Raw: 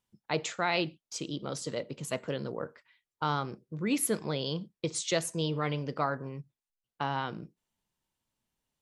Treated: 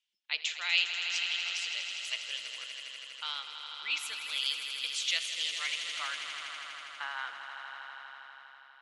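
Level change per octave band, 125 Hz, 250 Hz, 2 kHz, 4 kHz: below −40 dB, below −30 dB, +5.5 dB, +8.5 dB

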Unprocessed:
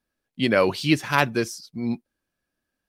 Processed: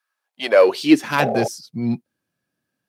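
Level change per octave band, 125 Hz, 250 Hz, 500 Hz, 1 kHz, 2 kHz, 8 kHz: −0.5, +5.5, +7.5, +3.0, +0.5, +2.0 decibels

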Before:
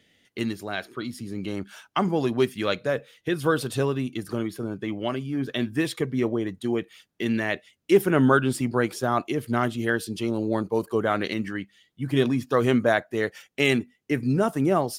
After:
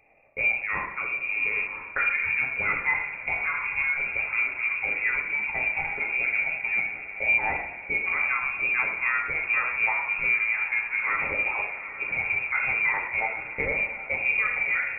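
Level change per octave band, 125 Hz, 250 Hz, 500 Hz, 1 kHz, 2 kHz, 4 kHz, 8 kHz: −19.0 dB, −24.5 dB, −16.0 dB, −3.0 dB, +9.0 dB, below −15 dB, below −40 dB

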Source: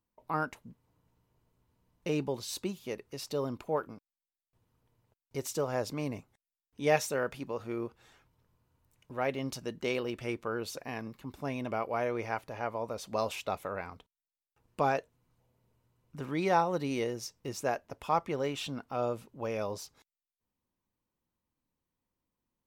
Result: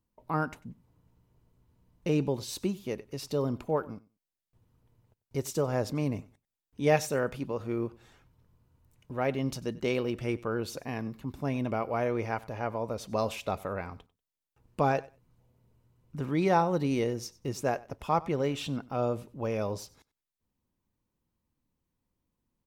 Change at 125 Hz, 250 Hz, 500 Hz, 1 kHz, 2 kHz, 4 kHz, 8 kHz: +7.0, +5.0, +2.5, +1.0, +0.5, 0.0, 0.0 decibels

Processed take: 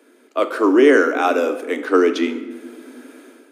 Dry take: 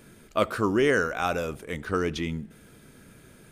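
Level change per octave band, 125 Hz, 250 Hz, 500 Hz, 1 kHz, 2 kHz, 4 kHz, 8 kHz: below −20 dB, +11.5 dB, +11.0 dB, +8.0 dB, +7.0 dB, +5.0 dB, +3.5 dB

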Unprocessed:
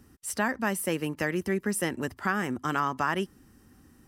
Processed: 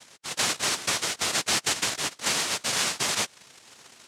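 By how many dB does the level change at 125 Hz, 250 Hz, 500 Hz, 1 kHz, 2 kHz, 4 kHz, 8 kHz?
−7.5, −10.0, −5.5, −2.0, +1.5, +17.0, +12.0 decibels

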